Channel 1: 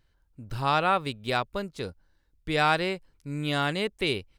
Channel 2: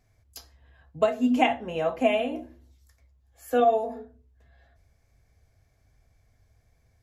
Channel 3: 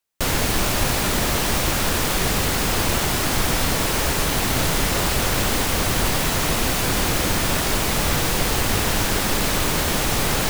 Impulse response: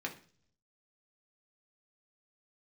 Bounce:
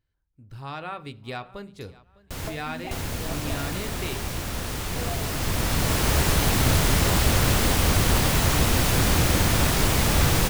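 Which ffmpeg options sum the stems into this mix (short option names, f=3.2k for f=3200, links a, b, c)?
-filter_complex "[0:a]dynaudnorm=f=590:g=3:m=6dB,volume=-14.5dB,asplit=4[a][b][c][d];[b]volume=-7.5dB[e];[c]volume=-20.5dB[f];[1:a]adelay=1450,volume=-12.5dB[g];[2:a]adelay=2100,volume=-2.5dB,asplit=2[h][i];[i]volume=-10dB[j];[d]apad=whole_len=555573[k];[h][k]sidechaincompress=threshold=-56dB:ratio=4:attack=5.5:release=1080[l];[a][g]amix=inputs=2:normalize=0,acompressor=threshold=-35dB:ratio=3,volume=0dB[m];[3:a]atrim=start_sample=2205[n];[e][n]afir=irnorm=-1:irlink=0[o];[f][j]amix=inputs=2:normalize=0,aecho=0:1:605|1210|1815|2420:1|0.28|0.0784|0.022[p];[l][m][o][p]amix=inputs=4:normalize=0,equalizer=f=83:w=0.62:g=7.5"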